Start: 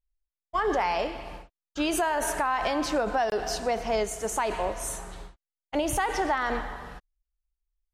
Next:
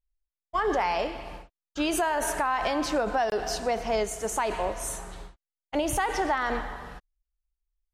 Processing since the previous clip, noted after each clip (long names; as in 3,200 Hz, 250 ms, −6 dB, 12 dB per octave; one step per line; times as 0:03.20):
no processing that can be heard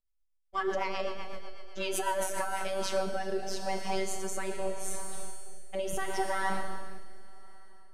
phases set to zero 192 Hz
four-comb reverb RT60 3.1 s, combs from 29 ms, DRR 6 dB
rotating-speaker cabinet horn 8 Hz, later 0.8 Hz, at 0:02.08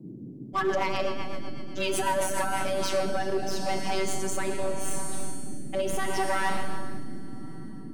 noise in a band 120–330 Hz −47 dBFS
gain into a clipping stage and back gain 25.5 dB
level +5.5 dB